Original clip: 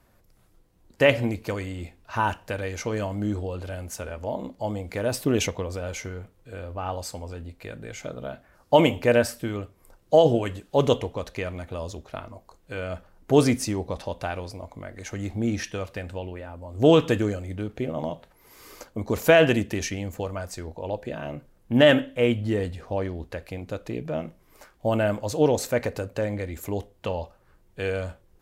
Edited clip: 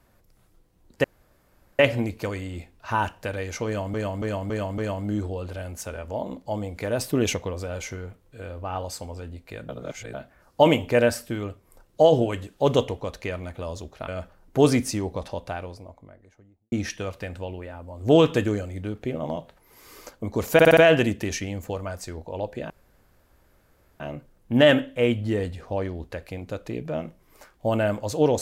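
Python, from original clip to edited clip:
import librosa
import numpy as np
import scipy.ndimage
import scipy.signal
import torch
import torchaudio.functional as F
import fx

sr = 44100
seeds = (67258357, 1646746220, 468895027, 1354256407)

y = fx.studio_fade_out(x, sr, start_s=13.86, length_s=1.6)
y = fx.edit(y, sr, fx.insert_room_tone(at_s=1.04, length_s=0.75),
    fx.repeat(start_s=2.91, length_s=0.28, count=5),
    fx.reverse_span(start_s=7.82, length_s=0.45),
    fx.cut(start_s=12.21, length_s=0.61),
    fx.stutter(start_s=19.27, slice_s=0.06, count=5),
    fx.insert_room_tone(at_s=21.2, length_s=1.3), tone=tone)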